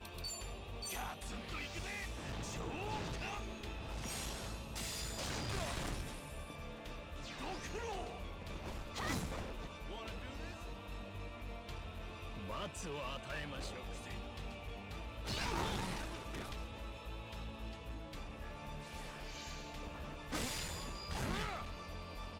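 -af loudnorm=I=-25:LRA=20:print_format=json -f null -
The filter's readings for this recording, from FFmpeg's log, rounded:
"input_i" : "-43.9",
"input_tp" : "-26.9",
"input_lra" : "3.9",
"input_thresh" : "-53.9",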